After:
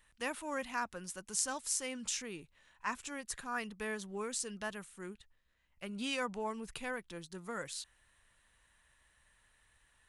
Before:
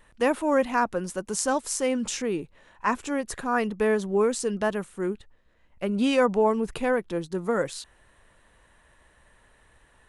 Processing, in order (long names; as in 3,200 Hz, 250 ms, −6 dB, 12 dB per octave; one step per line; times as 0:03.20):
guitar amp tone stack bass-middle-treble 5-5-5
level +1.5 dB